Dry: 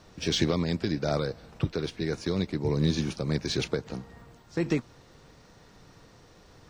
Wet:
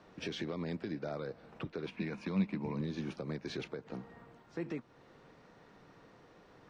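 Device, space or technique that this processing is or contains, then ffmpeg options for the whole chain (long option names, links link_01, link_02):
DJ mixer with the lows and highs turned down: -filter_complex "[0:a]acrossover=split=150 3000:gain=0.224 1 0.2[link_01][link_02][link_03];[link_01][link_02][link_03]amix=inputs=3:normalize=0,alimiter=level_in=2.5dB:limit=-24dB:level=0:latency=1:release=310,volume=-2.5dB,asettb=1/sr,asplit=3[link_04][link_05][link_06];[link_04]atrim=end=1.864[link_07];[link_05]atrim=start=1.86:end=2.81,asetpts=PTS-STARTPTS,afade=type=in:duration=0.004:curve=qsin,afade=type=out:start_time=0.946:duration=0.004:curve=qsin,equalizer=frequency=200:width_type=o:width=0.33:gain=12,equalizer=frequency=400:width_type=o:width=0.33:gain=-7,equalizer=frequency=1000:width_type=o:width=0.33:gain=8,equalizer=frequency=2500:width_type=o:width=0.33:gain=12[link_08];[link_06]atrim=start=2.806[link_09];[link_07][link_08]acrossfade=duration=0.004:curve1=hsin:curve2=qsin[link_10];[link_10][link_09]acrossfade=duration=0.004:curve1=qsin:curve2=hsin,volume=-2.5dB"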